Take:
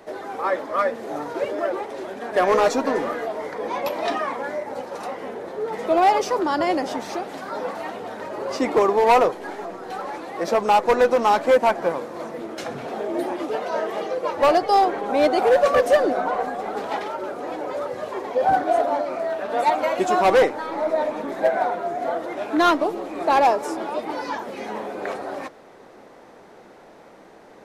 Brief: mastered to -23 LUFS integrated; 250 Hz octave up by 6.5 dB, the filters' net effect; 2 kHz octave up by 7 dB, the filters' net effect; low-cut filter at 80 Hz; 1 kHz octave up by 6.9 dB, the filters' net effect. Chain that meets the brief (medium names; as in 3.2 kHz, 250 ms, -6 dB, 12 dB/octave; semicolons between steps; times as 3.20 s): high-pass 80 Hz; peaking EQ 250 Hz +8 dB; peaking EQ 1 kHz +7.5 dB; peaking EQ 2 kHz +6 dB; trim -6 dB